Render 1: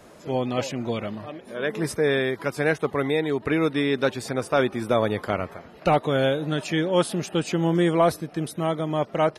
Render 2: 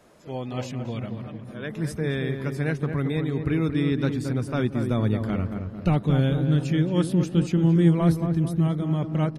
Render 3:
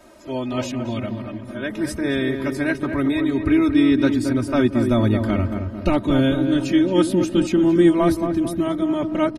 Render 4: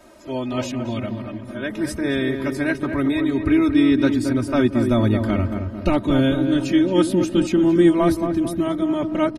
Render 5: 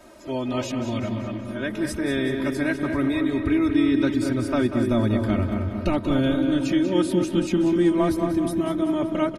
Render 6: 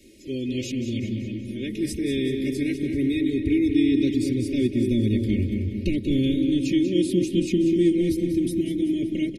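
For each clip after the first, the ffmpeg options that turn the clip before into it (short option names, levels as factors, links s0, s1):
-filter_complex "[0:a]bandreject=f=50:t=h:w=6,bandreject=f=100:t=h:w=6,asplit=2[s0][s1];[s1]adelay=224,lowpass=f=1400:p=1,volume=0.501,asplit=2[s2][s3];[s3]adelay=224,lowpass=f=1400:p=1,volume=0.53,asplit=2[s4][s5];[s5]adelay=224,lowpass=f=1400:p=1,volume=0.53,asplit=2[s6][s7];[s7]adelay=224,lowpass=f=1400:p=1,volume=0.53,asplit=2[s8][s9];[s9]adelay=224,lowpass=f=1400:p=1,volume=0.53,asplit=2[s10][s11];[s11]adelay=224,lowpass=f=1400:p=1,volume=0.53,asplit=2[s12][s13];[s13]adelay=224,lowpass=f=1400:p=1,volume=0.53[s14];[s0][s2][s4][s6][s8][s10][s12][s14]amix=inputs=8:normalize=0,asubboost=boost=8.5:cutoff=210,volume=0.447"
-af "aecho=1:1:3.2:0.96,volume=1.68"
-af anull
-af "acompressor=threshold=0.0562:ratio=1.5,aecho=1:1:190|380|570|760|950|1140:0.316|0.168|0.0888|0.0471|0.025|0.0132"
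-af "asuperstop=centerf=1000:order=12:qfactor=0.63"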